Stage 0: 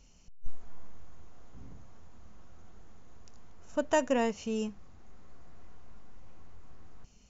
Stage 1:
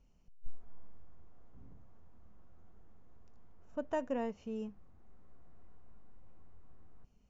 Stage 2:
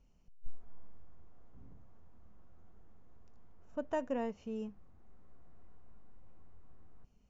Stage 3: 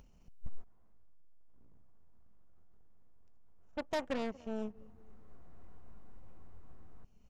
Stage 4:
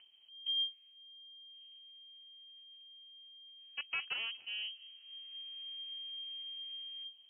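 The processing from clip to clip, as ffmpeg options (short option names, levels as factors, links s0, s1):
-af "lowpass=f=1100:p=1,volume=0.447"
-af anull
-filter_complex "[0:a]asplit=2[s0][s1];[s1]adelay=235,lowpass=f=2000:p=1,volume=0.0794,asplit=2[s2][s3];[s3]adelay=235,lowpass=f=2000:p=1,volume=0.43,asplit=2[s4][s5];[s5]adelay=235,lowpass=f=2000:p=1,volume=0.43[s6];[s0][s2][s4][s6]amix=inputs=4:normalize=0,acompressor=mode=upward:threshold=0.00251:ratio=2.5,aeval=exprs='0.0631*(cos(1*acos(clip(val(0)/0.0631,-1,1)))-cos(1*PI/2))+0.00794*(cos(2*acos(clip(val(0)/0.0631,-1,1)))-cos(2*PI/2))+0.00631*(cos(6*acos(clip(val(0)/0.0631,-1,1)))-cos(6*PI/2))+0.0158*(cos(8*acos(clip(val(0)/0.0631,-1,1)))-cos(8*PI/2))':c=same,volume=0.891"
-af "lowpass=f=2700:t=q:w=0.5098,lowpass=f=2700:t=q:w=0.6013,lowpass=f=2700:t=q:w=0.9,lowpass=f=2700:t=q:w=2.563,afreqshift=-3200,volume=0.708"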